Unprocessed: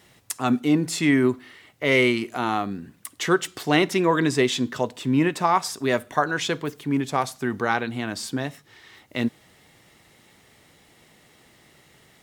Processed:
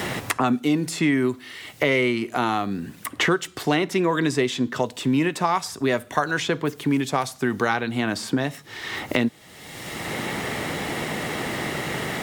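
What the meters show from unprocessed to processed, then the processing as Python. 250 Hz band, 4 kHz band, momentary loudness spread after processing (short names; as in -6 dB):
+0.5 dB, +1.0 dB, 9 LU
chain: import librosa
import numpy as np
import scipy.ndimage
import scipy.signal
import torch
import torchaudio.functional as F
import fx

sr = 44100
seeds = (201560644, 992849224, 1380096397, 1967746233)

y = fx.band_squash(x, sr, depth_pct=100)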